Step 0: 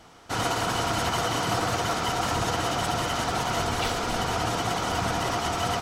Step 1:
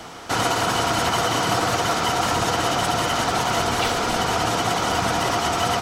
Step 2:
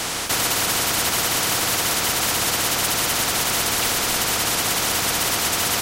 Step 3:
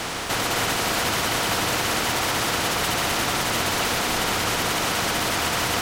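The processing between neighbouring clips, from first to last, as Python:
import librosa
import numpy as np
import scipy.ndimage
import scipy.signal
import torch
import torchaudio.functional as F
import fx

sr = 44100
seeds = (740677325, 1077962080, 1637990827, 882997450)

y1 = fx.low_shelf(x, sr, hz=96.0, db=-8.0)
y1 = fx.band_squash(y1, sr, depth_pct=40)
y1 = y1 * 10.0 ** (5.5 / 20.0)
y2 = fx.spectral_comp(y1, sr, ratio=4.0)
y3 = fx.reverse_delay(y2, sr, ms=260, wet_db=-3.5)
y3 = fx.high_shelf(y3, sr, hz=4900.0, db=-11.5)
y3 = fx.quant_dither(y3, sr, seeds[0], bits=8, dither='none')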